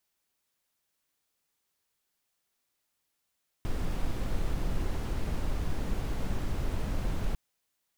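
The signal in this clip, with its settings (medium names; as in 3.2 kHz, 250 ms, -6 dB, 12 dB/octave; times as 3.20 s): noise brown, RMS -29 dBFS 3.70 s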